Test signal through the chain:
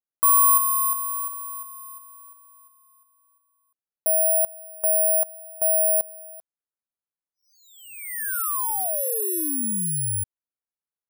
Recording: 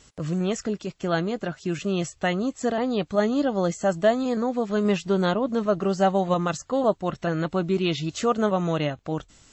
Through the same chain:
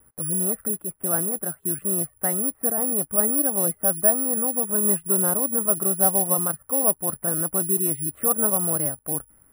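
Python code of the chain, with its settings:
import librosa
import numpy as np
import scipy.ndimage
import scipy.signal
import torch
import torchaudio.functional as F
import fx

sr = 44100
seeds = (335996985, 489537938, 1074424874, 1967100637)

y = scipy.signal.sosfilt(scipy.signal.butter(4, 1700.0, 'lowpass', fs=sr, output='sos'), x)
y = fx.vibrato(y, sr, rate_hz=0.96, depth_cents=22.0)
y = (np.kron(scipy.signal.resample_poly(y, 1, 4), np.eye(4)[0]) * 4)[:len(y)]
y = y * 10.0 ** (-5.0 / 20.0)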